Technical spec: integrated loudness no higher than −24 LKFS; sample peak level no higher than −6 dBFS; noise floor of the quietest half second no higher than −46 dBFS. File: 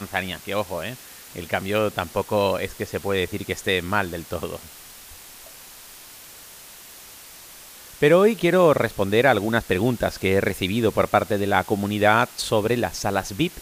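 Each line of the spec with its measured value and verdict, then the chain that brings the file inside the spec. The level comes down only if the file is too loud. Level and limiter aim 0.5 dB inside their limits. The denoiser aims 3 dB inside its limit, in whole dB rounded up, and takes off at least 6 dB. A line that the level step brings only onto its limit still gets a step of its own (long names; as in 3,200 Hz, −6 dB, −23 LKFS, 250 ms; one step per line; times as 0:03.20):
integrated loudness −22.0 LKFS: out of spec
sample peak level −3.0 dBFS: out of spec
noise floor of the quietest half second −44 dBFS: out of spec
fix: level −2.5 dB
brickwall limiter −6.5 dBFS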